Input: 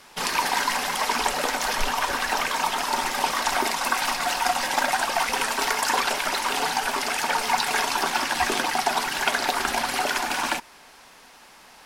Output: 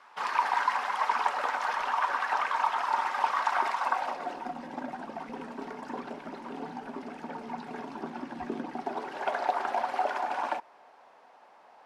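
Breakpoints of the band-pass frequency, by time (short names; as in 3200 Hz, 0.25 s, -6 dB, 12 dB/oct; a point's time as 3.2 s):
band-pass, Q 1.7
3.78 s 1100 Hz
4.53 s 230 Hz
8.66 s 230 Hz
9.37 s 690 Hz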